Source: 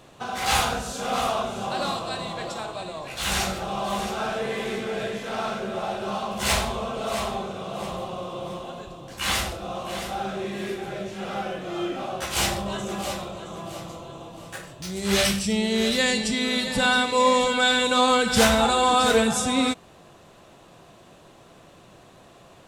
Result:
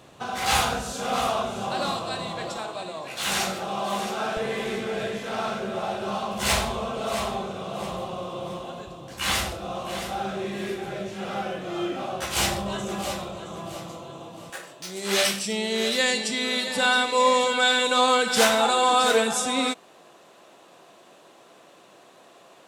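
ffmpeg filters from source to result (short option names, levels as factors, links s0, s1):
-af "asetnsamples=n=441:p=0,asendcmd='2.57 highpass f 170;4.37 highpass f 49;13.75 highpass f 110;14.5 highpass f 310',highpass=49"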